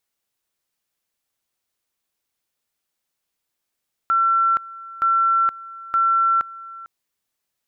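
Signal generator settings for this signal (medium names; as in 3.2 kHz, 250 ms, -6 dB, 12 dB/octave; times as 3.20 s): two-level tone 1.35 kHz -14.5 dBFS, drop 19.5 dB, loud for 0.47 s, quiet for 0.45 s, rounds 3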